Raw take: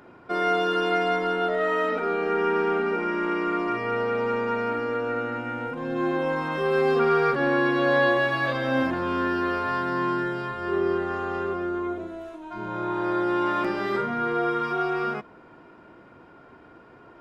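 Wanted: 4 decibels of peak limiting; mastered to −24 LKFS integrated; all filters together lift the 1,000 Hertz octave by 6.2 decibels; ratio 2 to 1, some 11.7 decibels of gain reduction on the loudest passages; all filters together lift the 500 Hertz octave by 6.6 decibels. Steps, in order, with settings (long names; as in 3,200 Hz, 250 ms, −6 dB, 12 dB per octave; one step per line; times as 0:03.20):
parametric band 500 Hz +7 dB
parametric band 1,000 Hz +6.5 dB
downward compressor 2 to 1, threshold −34 dBFS
level +6 dB
brickwall limiter −15 dBFS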